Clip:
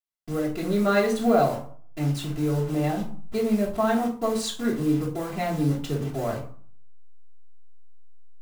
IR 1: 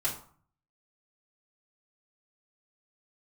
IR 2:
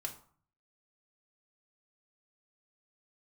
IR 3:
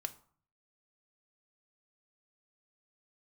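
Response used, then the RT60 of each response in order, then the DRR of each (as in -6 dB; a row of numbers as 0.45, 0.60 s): 1; 0.50, 0.50, 0.50 s; -7.5, 1.0, 8.0 dB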